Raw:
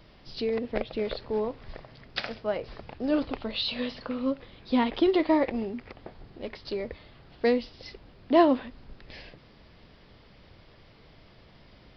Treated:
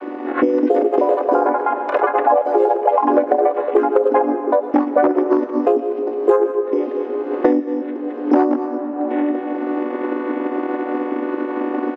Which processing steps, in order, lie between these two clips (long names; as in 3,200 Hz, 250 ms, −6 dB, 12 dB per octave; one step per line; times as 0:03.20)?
channel vocoder with a chord as carrier minor triad, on B3
bad sample-rate conversion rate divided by 8×, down none, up hold
low-pass filter 3,200 Hz 12 dB per octave
parametric band 290 Hz +12.5 dB 0.55 octaves
single-tap delay 219 ms −11.5 dB
transient designer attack +4 dB, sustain −3 dB
delay with pitch and tempo change per echo 399 ms, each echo +6 semitones, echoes 3
asymmetric clip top −6.5 dBFS, bottom −3.5 dBFS
convolution reverb RT60 1.8 s, pre-delay 70 ms, DRR 14 dB
automatic gain control gain up to 9.5 dB
three-way crossover with the lows and the highs turned down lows −22 dB, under 400 Hz, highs −22 dB, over 2,200 Hz
multiband upward and downward compressor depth 100%
level +4 dB